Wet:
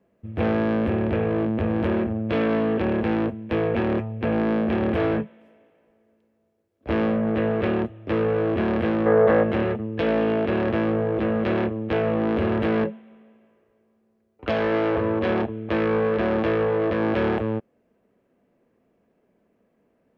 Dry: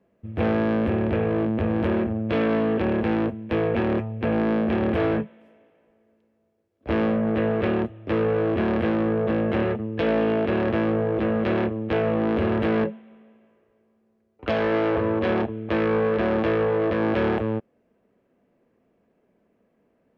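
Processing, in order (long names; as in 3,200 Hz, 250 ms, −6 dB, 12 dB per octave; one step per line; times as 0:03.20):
gain on a spectral selection 0:09.06–0:09.43, 430–2,200 Hz +9 dB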